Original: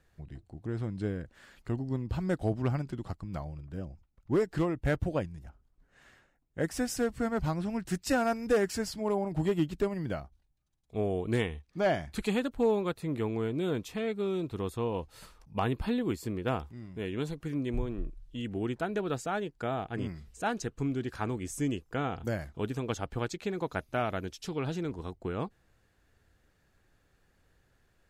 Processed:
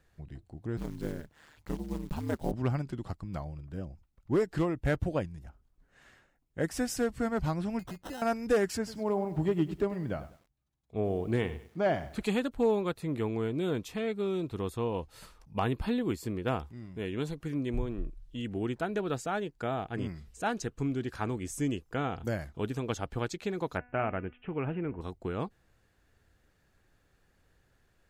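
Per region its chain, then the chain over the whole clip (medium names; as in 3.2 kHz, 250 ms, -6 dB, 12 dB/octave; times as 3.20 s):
0.77–2.53 s: block-companded coder 5-bit + peaking EQ 910 Hz +6.5 dB 0.27 oct + ring modulator 76 Hz
7.79–8.22 s: sample-rate reducer 2.3 kHz + compression 10:1, threshold -37 dBFS
8.77–12.24 s: high-pass 46 Hz + treble shelf 3.1 kHz -9 dB + bit-crushed delay 99 ms, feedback 35%, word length 9-bit, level -14.5 dB
23.77–25.01 s: steep low-pass 2.8 kHz 72 dB/octave + de-hum 246 Hz, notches 31
whole clip: none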